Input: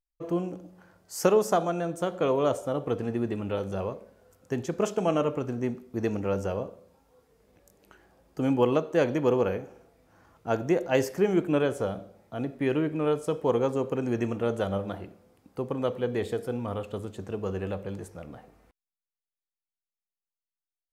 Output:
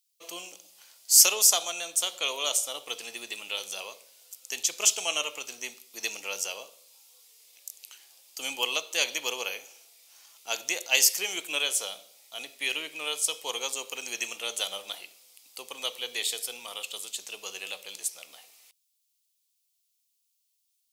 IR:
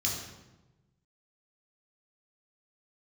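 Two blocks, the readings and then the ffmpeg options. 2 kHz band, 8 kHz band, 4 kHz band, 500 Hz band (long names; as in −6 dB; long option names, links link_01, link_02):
+7.0 dB, +21.0 dB, +17.0 dB, −14.0 dB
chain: -af "highpass=880,aexciter=amount=8.9:drive=7.4:freq=2400,volume=-3.5dB"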